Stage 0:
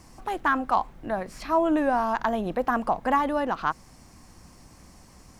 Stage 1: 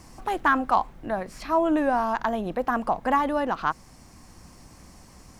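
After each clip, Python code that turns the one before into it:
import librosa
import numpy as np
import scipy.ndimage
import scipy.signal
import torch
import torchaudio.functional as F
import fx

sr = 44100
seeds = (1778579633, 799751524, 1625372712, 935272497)

y = fx.rider(x, sr, range_db=4, speed_s=2.0)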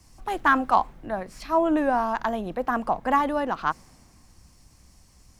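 y = fx.band_widen(x, sr, depth_pct=40)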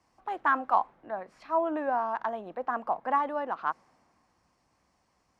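y = fx.bandpass_q(x, sr, hz=900.0, q=0.76)
y = y * librosa.db_to_amplitude(-4.0)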